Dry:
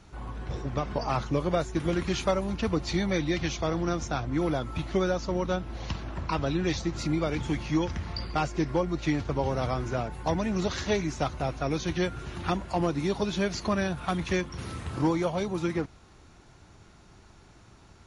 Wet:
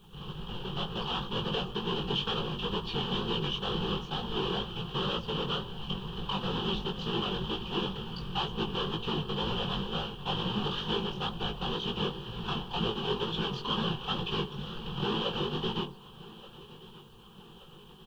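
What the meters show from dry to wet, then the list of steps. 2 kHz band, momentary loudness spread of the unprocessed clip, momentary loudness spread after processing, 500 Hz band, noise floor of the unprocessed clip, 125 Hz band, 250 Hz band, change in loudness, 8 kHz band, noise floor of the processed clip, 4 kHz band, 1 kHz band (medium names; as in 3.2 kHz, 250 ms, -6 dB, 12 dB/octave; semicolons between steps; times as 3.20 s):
-4.5 dB, 5 LU, 10 LU, -6.0 dB, -55 dBFS, -5.0 dB, -6.5 dB, -3.5 dB, -16.0 dB, -52 dBFS, +8.0 dB, -3.0 dB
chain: square wave that keeps the level; band-stop 1.4 kHz, Q 13; de-hum 50.84 Hz, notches 24; sine folder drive 5 dB, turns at -13 dBFS; four-pole ladder low-pass 3.2 kHz, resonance 85%; whisper effect; bit crusher 11-bit; static phaser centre 420 Hz, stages 8; chorus 2.1 Hz, delay 17.5 ms, depth 4 ms; feedback delay 1178 ms, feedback 58%, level -19.5 dB; trim +3 dB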